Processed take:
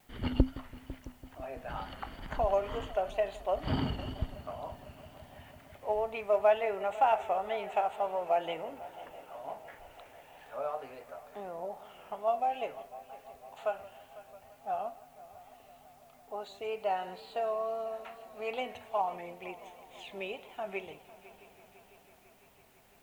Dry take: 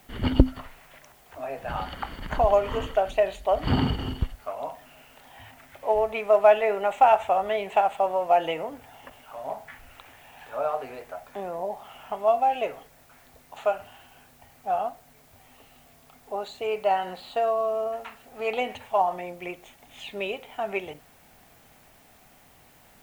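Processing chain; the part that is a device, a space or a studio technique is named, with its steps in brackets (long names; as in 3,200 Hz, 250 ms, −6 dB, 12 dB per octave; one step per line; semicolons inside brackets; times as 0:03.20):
multi-head tape echo (echo machine with several playback heads 167 ms, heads first and third, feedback 74%, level −20 dB; tape wow and flutter)
level −8.5 dB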